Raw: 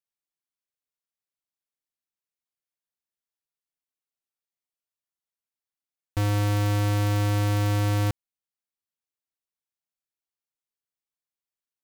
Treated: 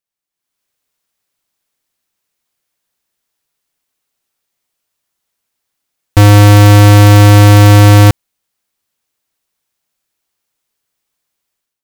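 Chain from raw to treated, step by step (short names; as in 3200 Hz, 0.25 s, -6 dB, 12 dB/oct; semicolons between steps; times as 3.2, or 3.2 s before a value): AGC gain up to 14 dB; gain +6 dB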